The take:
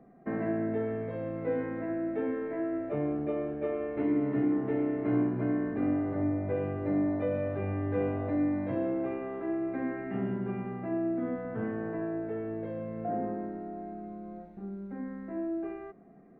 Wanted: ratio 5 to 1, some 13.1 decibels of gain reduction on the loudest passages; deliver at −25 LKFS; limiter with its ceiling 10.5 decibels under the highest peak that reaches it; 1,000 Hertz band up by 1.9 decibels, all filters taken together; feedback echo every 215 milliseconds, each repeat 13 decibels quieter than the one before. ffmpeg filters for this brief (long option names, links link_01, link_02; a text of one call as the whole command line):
ffmpeg -i in.wav -af "equalizer=frequency=1000:width_type=o:gain=3,acompressor=threshold=-39dB:ratio=5,alimiter=level_in=15.5dB:limit=-24dB:level=0:latency=1,volume=-15.5dB,aecho=1:1:215|430|645:0.224|0.0493|0.0108,volume=22dB" out.wav